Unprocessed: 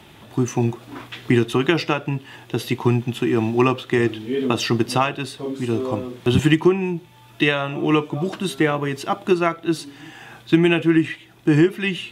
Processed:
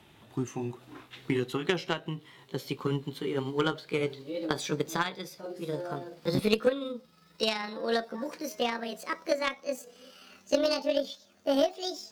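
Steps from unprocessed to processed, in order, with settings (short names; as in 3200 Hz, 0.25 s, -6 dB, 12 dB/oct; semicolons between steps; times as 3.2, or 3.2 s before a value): gliding pitch shift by +11 st starting unshifted; added harmonics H 3 -15 dB, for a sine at -2 dBFS; gain -4.5 dB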